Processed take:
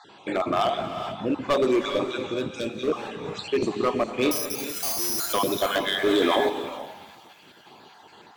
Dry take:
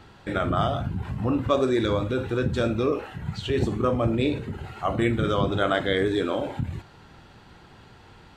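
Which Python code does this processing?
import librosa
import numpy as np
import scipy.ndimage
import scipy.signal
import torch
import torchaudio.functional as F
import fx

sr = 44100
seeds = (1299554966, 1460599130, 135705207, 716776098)

p1 = fx.spec_dropout(x, sr, seeds[0], share_pct=37)
p2 = fx.cabinet(p1, sr, low_hz=360.0, low_slope=12, high_hz=7800.0, hz=(510.0, 1400.0, 5300.0), db=(-5, -8, -5))
p3 = fx.notch(p2, sr, hz=1900.0, q=8.2)
p4 = fx.resample_bad(p3, sr, factor=8, down='filtered', up='zero_stuff', at=(4.31, 5.33))
p5 = np.clip(10.0 ** (23.5 / 20.0) * p4, -1.0, 1.0) / 10.0 ** (23.5 / 20.0)
p6 = fx.peak_eq(p5, sr, hz=1000.0, db=-12.0, octaves=2.1, at=(2.26, 2.88))
p7 = p6 + fx.echo_thinned(p6, sr, ms=230, feedback_pct=73, hz=570.0, wet_db=-20.5, dry=0)
p8 = fx.rev_gated(p7, sr, seeds[1], gate_ms=470, shape='rising', drr_db=7.0)
p9 = fx.env_flatten(p8, sr, amount_pct=70, at=(6.05, 6.48), fade=0.02)
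y = p9 * 10.0 ** (6.5 / 20.0)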